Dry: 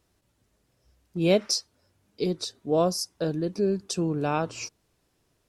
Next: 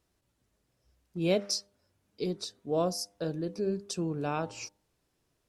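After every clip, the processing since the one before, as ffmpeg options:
-af "bandreject=f=100.4:t=h:w=4,bandreject=f=200.8:t=h:w=4,bandreject=f=301.2:t=h:w=4,bandreject=f=401.6:t=h:w=4,bandreject=f=502:t=h:w=4,bandreject=f=602.4:t=h:w=4,bandreject=f=702.8:t=h:w=4,bandreject=f=803.2:t=h:w=4,bandreject=f=903.6:t=h:w=4,volume=-5.5dB"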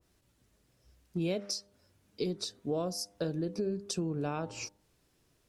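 -af "equalizer=f=810:t=o:w=1.5:g=-3,acompressor=threshold=-36dB:ratio=6,adynamicequalizer=threshold=0.00141:dfrequency=1500:dqfactor=0.7:tfrequency=1500:tqfactor=0.7:attack=5:release=100:ratio=0.375:range=2.5:mode=cutabove:tftype=highshelf,volume=6dB"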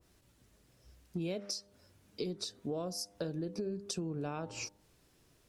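-af "acompressor=threshold=-44dB:ratio=2,volume=3.5dB"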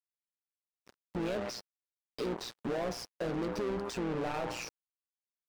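-filter_complex "[0:a]acrusher=bits=7:mix=0:aa=0.5,asplit=2[a][b];[b]highpass=f=720:p=1,volume=33dB,asoftclip=type=tanh:threshold=-24dB[c];[a][c]amix=inputs=2:normalize=0,lowpass=f=1.6k:p=1,volume=-6dB,tremolo=f=120:d=0.667"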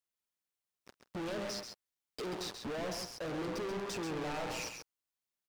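-af "asoftclip=type=hard:threshold=-40dB,aecho=1:1:134:0.473,volume=2.5dB"

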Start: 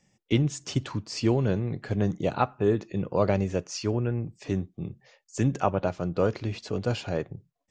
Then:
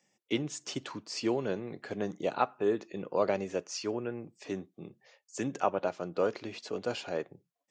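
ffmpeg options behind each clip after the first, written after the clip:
-af "highpass=300,volume=-3dB"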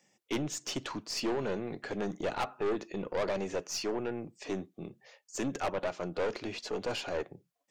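-af "aeval=exprs='(tanh(39.8*val(0)+0.3)-tanh(0.3))/39.8':c=same,volume=4.5dB"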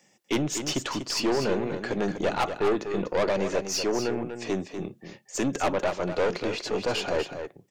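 -af "aecho=1:1:244:0.376,volume=7dB"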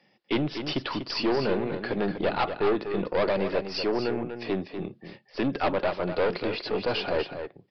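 -af "aresample=11025,aresample=44100"

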